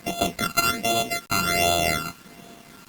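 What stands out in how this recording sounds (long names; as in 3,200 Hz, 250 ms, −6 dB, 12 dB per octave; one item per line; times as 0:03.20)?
a buzz of ramps at a fixed pitch in blocks of 64 samples
phaser sweep stages 12, 1.3 Hz, lowest notch 570–1,800 Hz
a quantiser's noise floor 8 bits, dither none
Opus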